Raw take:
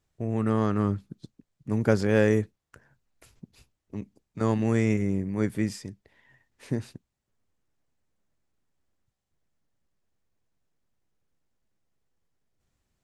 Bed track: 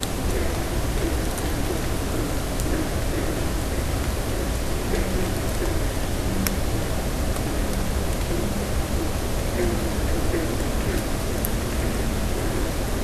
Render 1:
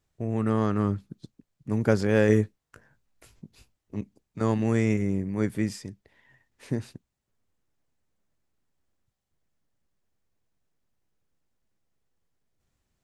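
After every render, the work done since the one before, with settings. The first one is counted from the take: 2.27–4.01 doubler 19 ms -6 dB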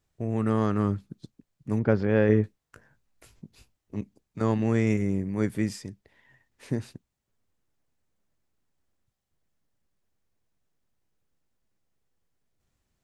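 1.79–2.44 air absorption 300 m; 4.42–4.87 air absorption 51 m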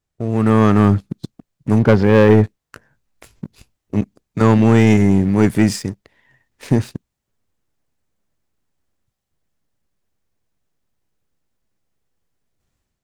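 AGC gain up to 8 dB; sample leveller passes 2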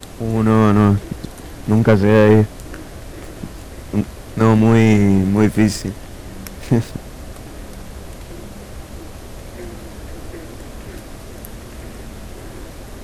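add bed track -9 dB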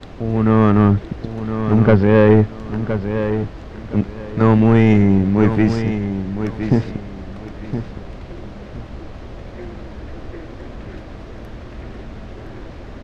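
air absorption 210 m; feedback echo 1.016 s, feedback 24%, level -9 dB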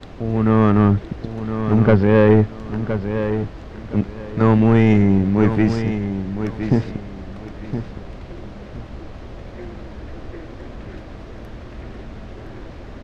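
gain -1.5 dB

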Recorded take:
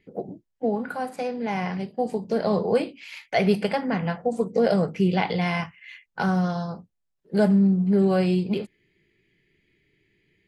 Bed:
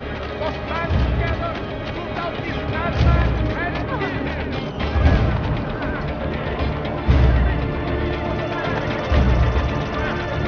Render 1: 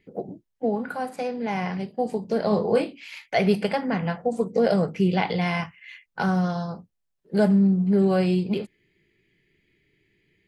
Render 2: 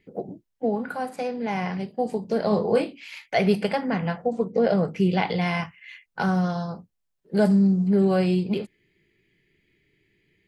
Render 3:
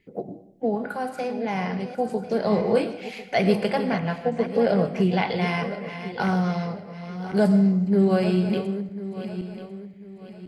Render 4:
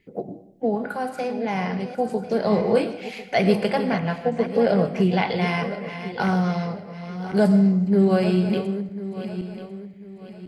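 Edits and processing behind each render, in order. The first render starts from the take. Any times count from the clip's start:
2.49–3.08 doubler 24 ms -7.5 dB
4.28–4.85 air absorption 130 m; 7.45–7.88 resonant high shelf 3900 Hz +8.5 dB, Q 1.5
regenerating reverse delay 0.523 s, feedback 57%, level -10.5 dB; digital reverb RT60 0.71 s, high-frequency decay 0.8×, pre-delay 65 ms, DRR 13 dB
gain +1.5 dB

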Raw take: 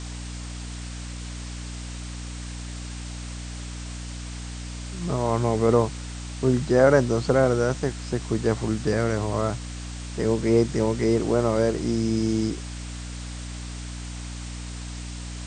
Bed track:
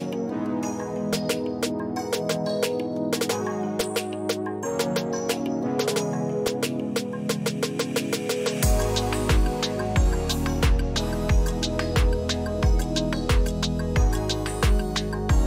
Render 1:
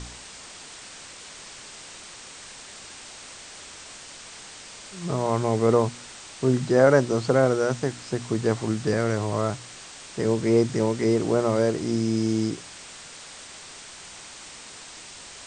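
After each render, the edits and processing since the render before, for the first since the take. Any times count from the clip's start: de-hum 60 Hz, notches 5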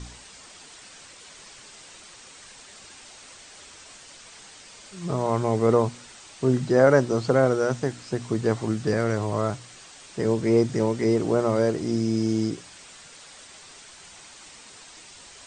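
denoiser 6 dB, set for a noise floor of -43 dBFS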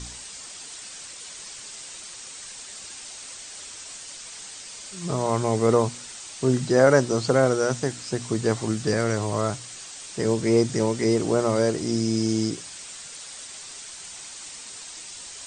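high shelf 4200 Hz +12 dB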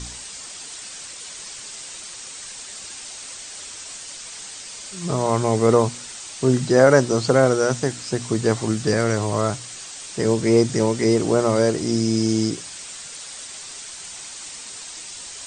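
gain +3.5 dB; limiter -2 dBFS, peak gain reduction 1 dB

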